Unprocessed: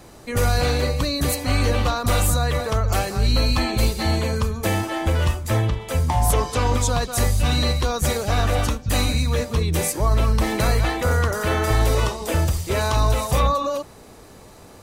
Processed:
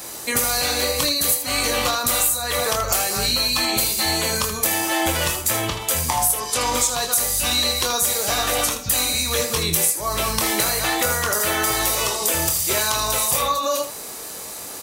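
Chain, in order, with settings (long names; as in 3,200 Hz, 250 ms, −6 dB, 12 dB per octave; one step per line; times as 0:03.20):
RIAA equalisation recording
downward compressor 6 to 1, threshold −26 dBFS, peak gain reduction 17.5 dB
ambience of single reflections 24 ms −6.5 dB, 79 ms −9.5 dB
level +7 dB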